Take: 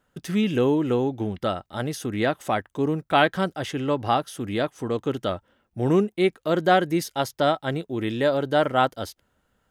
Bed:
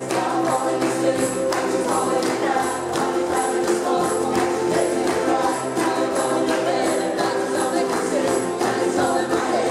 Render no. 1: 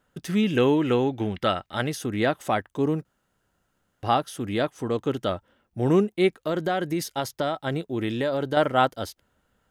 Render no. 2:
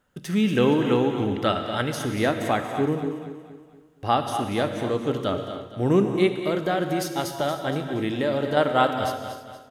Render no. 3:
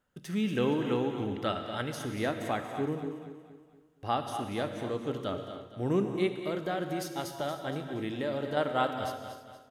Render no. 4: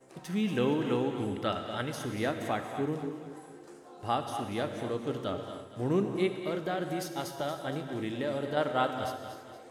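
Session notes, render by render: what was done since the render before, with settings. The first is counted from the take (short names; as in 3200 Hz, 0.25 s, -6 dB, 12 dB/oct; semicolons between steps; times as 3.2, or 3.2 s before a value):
0.57–1.9 bell 2300 Hz +8 dB 1.7 oct; 3.05–4.03 room tone; 6.4–8.57 compressor, threshold -21 dBFS
on a send: feedback echo 0.235 s, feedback 44%, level -11 dB; on the sum: non-linear reverb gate 0.34 s flat, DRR 6 dB
gain -8.5 dB
add bed -31 dB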